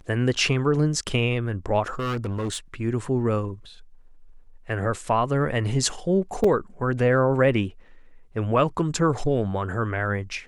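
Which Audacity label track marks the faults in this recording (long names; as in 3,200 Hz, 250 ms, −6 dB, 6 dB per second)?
1.990000	2.810000	clipping −24 dBFS
6.440000	6.440000	drop-out 3.8 ms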